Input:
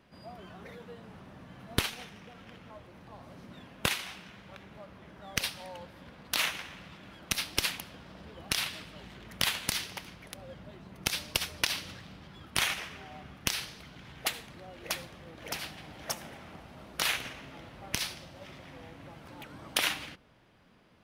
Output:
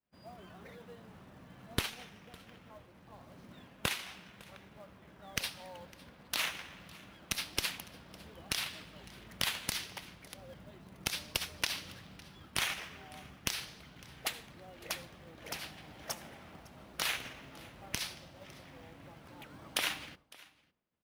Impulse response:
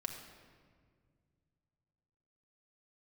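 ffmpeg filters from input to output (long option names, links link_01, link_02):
-af "acrusher=bits=5:mode=log:mix=0:aa=0.000001,agate=range=-33dB:threshold=-49dB:ratio=3:detection=peak,aecho=1:1:556:0.075,volume=-4.5dB"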